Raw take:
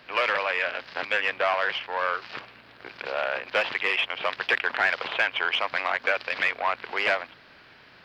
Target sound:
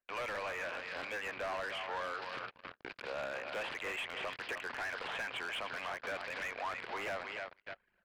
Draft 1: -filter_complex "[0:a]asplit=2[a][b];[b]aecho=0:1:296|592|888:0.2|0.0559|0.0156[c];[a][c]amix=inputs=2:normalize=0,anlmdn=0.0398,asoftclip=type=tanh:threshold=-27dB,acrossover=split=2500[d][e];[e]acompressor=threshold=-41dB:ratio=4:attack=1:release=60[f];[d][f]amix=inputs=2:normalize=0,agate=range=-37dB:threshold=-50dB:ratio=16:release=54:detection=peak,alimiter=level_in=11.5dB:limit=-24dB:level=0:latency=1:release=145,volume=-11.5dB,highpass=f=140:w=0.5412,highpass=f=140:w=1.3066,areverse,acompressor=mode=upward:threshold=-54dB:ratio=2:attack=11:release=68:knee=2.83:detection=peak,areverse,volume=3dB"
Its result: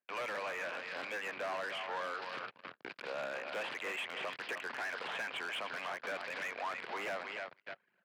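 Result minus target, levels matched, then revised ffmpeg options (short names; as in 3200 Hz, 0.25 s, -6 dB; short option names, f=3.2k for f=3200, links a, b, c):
125 Hz band -4.5 dB
-filter_complex "[0:a]asplit=2[a][b];[b]aecho=0:1:296|592|888:0.2|0.0559|0.0156[c];[a][c]amix=inputs=2:normalize=0,anlmdn=0.0398,asoftclip=type=tanh:threshold=-27dB,acrossover=split=2500[d][e];[e]acompressor=threshold=-41dB:ratio=4:attack=1:release=60[f];[d][f]amix=inputs=2:normalize=0,agate=range=-37dB:threshold=-50dB:ratio=16:release=54:detection=peak,alimiter=level_in=11.5dB:limit=-24dB:level=0:latency=1:release=145,volume=-11.5dB,areverse,acompressor=mode=upward:threshold=-54dB:ratio=2:attack=11:release=68:knee=2.83:detection=peak,areverse,volume=3dB"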